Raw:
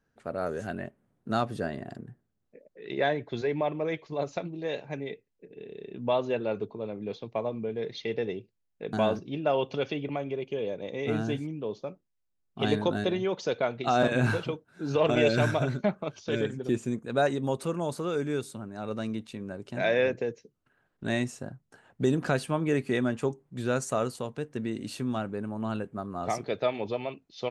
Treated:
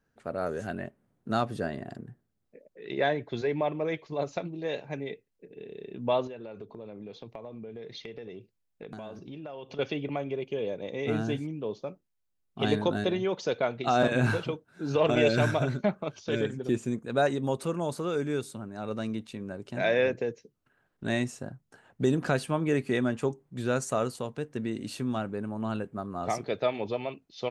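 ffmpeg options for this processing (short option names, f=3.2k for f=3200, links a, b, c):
-filter_complex "[0:a]asettb=1/sr,asplit=3[a][b][c];[a]atrim=end=6.274[d];[b]atrim=start=6.27:end=9.79,asetpts=PTS-STARTPTS,afade=t=in:d=0.004:c=qsin,afade=t=out:st=3.516:d=0.004:c=qsin,acompressor=threshold=-38dB:ratio=8:attack=3.2:release=140:knee=1:detection=peak[e];[c]atrim=start=9.786[f];[d][e]acrossfade=d=0.004:c1=hsin:c2=qsin[g];[g][f]acrossfade=d=0.004:c1=qsin:c2=hsin"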